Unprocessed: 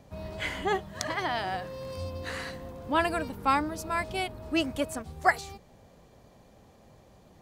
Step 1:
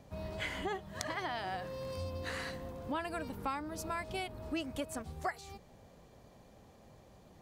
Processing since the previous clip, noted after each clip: compression 5:1, threshold -32 dBFS, peak gain reduction 14 dB; trim -2.5 dB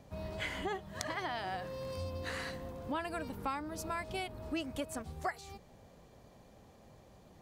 no audible change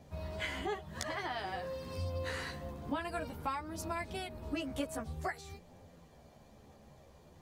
chorus voices 2, 0.52 Hz, delay 13 ms, depth 1.5 ms; trim +3 dB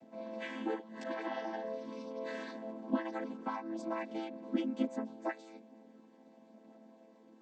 vocoder on a held chord minor triad, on A3; trim +2 dB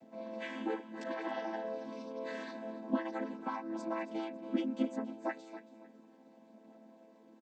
feedback delay 276 ms, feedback 27%, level -14.5 dB

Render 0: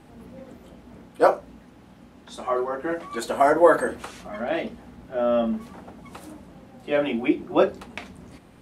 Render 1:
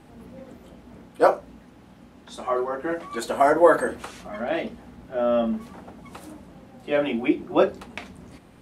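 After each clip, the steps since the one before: no audible change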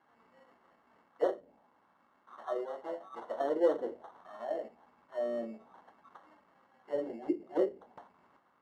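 sample-and-hold 18×; auto-wah 400–1200 Hz, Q 2.5, down, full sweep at -18 dBFS; trim -6.5 dB

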